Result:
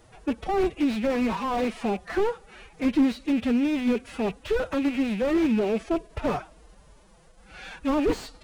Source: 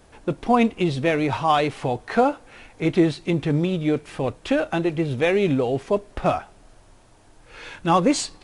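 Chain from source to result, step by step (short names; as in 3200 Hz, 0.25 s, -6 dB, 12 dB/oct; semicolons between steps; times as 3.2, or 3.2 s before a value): rattling part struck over -30 dBFS, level -25 dBFS; formant-preserving pitch shift +8.5 st; slew limiter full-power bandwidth 54 Hz; gain -1.5 dB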